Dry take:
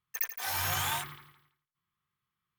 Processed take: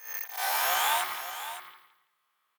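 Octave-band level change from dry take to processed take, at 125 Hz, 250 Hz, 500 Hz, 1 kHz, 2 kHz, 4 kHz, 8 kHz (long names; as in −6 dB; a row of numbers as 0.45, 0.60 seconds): below −20 dB, can't be measured, +8.5 dB, +8.0 dB, +5.5 dB, +4.5 dB, +3.0 dB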